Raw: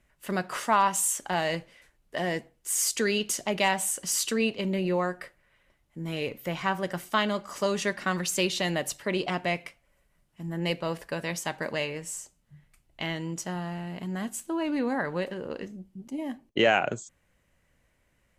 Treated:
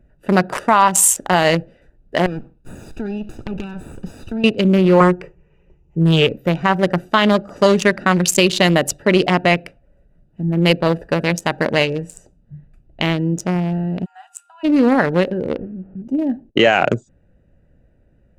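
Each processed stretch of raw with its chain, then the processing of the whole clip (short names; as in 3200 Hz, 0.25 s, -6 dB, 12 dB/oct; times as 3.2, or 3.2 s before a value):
2.26–4.44 minimum comb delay 0.78 ms + compressor 4:1, threshold -36 dBFS
5–6.27 ripple EQ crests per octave 0.75, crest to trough 14 dB + Doppler distortion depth 0.27 ms
14.04–14.63 bell 8200 Hz +9 dB 0.73 oct + whine 1400 Hz -51 dBFS + rippled Chebyshev high-pass 730 Hz, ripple 9 dB
15.57–16.02 delta modulation 16 kbps, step -52 dBFS + LPF 2400 Hz + compressor 1.5:1, threshold -49 dBFS
whole clip: Wiener smoothing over 41 samples; maximiser +17 dB; gain -1 dB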